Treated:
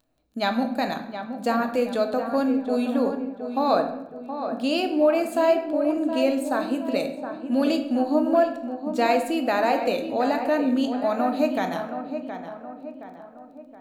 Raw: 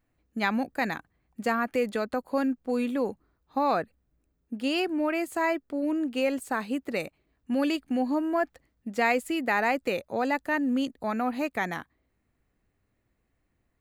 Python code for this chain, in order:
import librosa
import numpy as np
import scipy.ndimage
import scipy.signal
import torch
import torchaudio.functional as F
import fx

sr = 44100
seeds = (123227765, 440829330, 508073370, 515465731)

p1 = fx.low_shelf(x, sr, hz=210.0, db=-5.5)
p2 = fx.room_shoebox(p1, sr, seeds[0], volume_m3=290.0, walls='mixed', distance_m=0.56)
p3 = fx.dmg_crackle(p2, sr, seeds[1], per_s=10.0, level_db=-49.0)
p4 = fx.graphic_eq_31(p3, sr, hz=(250, 630, 2000, 4000), db=(7, 9, -10, 7))
p5 = p4 + fx.echo_tape(p4, sr, ms=720, feedback_pct=52, wet_db=-8, lp_hz=1900.0, drive_db=5.0, wow_cents=15, dry=0)
y = F.gain(torch.from_numpy(p5), 1.0).numpy()